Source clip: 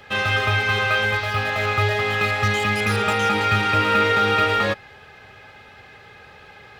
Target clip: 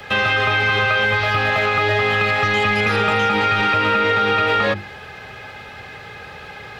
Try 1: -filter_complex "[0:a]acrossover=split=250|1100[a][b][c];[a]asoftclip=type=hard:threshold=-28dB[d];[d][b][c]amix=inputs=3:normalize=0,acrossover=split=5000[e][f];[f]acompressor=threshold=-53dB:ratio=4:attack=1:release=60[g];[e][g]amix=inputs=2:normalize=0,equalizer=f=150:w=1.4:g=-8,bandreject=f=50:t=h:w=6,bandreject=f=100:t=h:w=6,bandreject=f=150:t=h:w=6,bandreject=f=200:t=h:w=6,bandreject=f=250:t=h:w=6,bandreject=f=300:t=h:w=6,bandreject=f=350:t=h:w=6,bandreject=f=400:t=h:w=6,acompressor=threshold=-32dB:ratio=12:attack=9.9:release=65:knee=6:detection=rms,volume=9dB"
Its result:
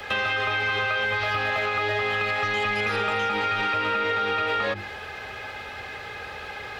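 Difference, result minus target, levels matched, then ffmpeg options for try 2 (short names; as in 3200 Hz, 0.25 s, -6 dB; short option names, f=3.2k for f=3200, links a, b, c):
compressor: peak gain reduction +7.5 dB; 125 Hz band -4.0 dB
-filter_complex "[0:a]acrossover=split=250|1100[a][b][c];[a]asoftclip=type=hard:threshold=-28dB[d];[d][b][c]amix=inputs=3:normalize=0,acrossover=split=5000[e][f];[f]acompressor=threshold=-53dB:ratio=4:attack=1:release=60[g];[e][g]amix=inputs=2:normalize=0,equalizer=f=150:w=1.4:g=2,bandreject=f=50:t=h:w=6,bandreject=f=100:t=h:w=6,bandreject=f=150:t=h:w=6,bandreject=f=200:t=h:w=6,bandreject=f=250:t=h:w=6,bandreject=f=300:t=h:w=6,bandreject=f=350:t=h:w=6,bandreject=f=400:t=h:w=6,acompressor=threshold=-23.5dB:ratio=12:attack=9.9:release=65:knee=6:detection=rms,volume=9dB"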